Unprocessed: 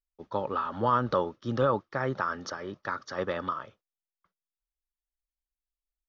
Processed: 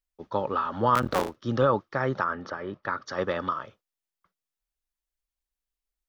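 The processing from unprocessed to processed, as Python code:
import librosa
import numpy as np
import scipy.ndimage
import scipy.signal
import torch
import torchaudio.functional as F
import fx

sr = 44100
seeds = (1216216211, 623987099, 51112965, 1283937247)

y = fx.cycle_switch(x, sr, every=3, mode='muted', at=(0.95, 1.36))
y = fx.lowpass(y, sr, hz=fx.line((2.23, 2200.0), (3.05, 3600.0)), slope=12, at=(2.23, 3.05), fade=0.02)
y = y * 10.0 ** (3.0 / 20.0)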